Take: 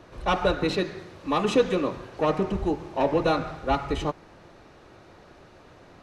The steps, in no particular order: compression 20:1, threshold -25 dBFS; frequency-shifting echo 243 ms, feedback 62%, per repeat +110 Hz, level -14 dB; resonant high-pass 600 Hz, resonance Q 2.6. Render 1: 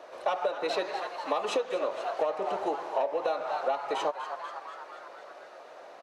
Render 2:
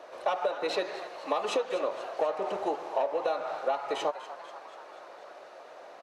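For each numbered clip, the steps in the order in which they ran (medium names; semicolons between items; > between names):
resonant high-pass > frequency-shifting echo > compression; resonant high-pass > compression > frequency-shifting echo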